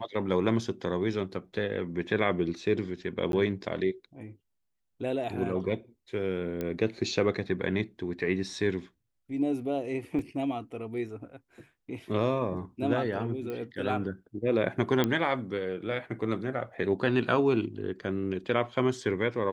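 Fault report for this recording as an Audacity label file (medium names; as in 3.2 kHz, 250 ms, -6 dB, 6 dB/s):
3.320000	3.330000	dropout 12 ms
6.610000	6.610000	pop -20 dBFS
10.190000	10.190000	dropout 2.1 ms
13.500000	13.500000	pop -25 dBFS
15.040000	15.040000	pop -12 dBFS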